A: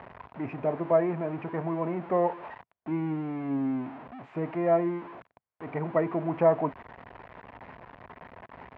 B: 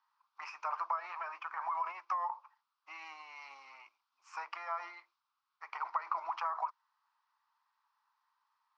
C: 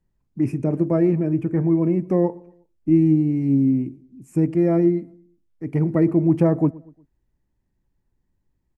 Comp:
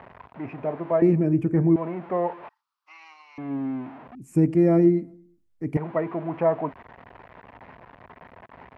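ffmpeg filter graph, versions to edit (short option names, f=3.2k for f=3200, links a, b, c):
-filter_complex "[2:a]asplit=2[a][b];[0:a]asplit=4[c][d][e][f];[c]atrim=end=1.022[g];[a]atrim=start=1.018:end=1.762[h];[d]atrim=start=1.758:end=2.492[i];[1:a]atrim=start=2.488:end=3.382[j];[e]atrim=start=3.378:end=4.152[k];[b]atrim=start=4.148:end=5.772[l];[f]atrim=start=5.768[m];[g][h]acrossfade=d=0.004:c1=hsin:c2=hsin[n];[n][i]acrossfade=d=0.004:c1=hsin:c2=hsin[o];[o][j]acrossfade=d=0.004:c1=hsin:c2=hsin[p];[p][k]acrossfade=d=0.004:c1=hsin:c2=hsin[q];[q][l]acrossfade=d=0.004:c1=hsin:c2=hsin[r];[r][m]acrossfade=d=0.004:c1=hsin:c2=hsin"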